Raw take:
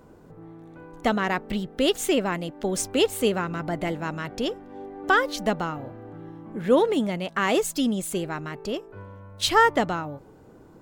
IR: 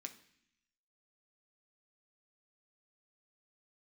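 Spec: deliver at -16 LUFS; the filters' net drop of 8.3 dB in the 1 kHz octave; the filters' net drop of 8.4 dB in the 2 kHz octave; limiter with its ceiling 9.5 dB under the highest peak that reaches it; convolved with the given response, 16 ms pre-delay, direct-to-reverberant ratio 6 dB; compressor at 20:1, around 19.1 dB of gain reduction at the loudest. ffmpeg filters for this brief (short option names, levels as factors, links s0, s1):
-filter_complex "[0:a]equalizer=f=1000:t=o:g=-9,equalizer=f=2000:t=o:g=-7.5,acompressor=threshold=0.0178:ratio=20,alimiter=level_in=2.66:limit=0.0631:level=0:latency=1,volume=0.376,asplit=2[s0][s1];[1:a]atrim=start_sample=2205,adelay=16[s2];[s1][s2]afir=irnorm=-1:irlink=0,volume=0.841[s3];[s0][s3]amix=inputs=2:normalize=0,volume=18.8"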